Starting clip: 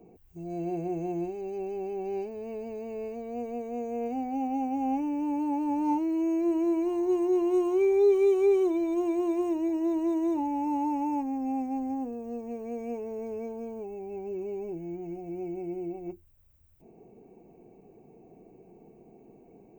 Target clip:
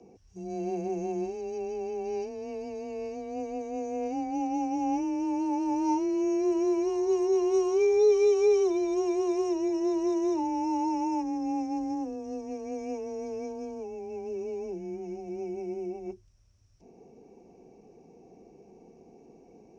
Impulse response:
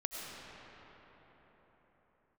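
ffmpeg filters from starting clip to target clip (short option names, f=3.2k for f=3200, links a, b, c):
-af "lowpass=f=5.6k:t=q:w=15,afreqshift=18"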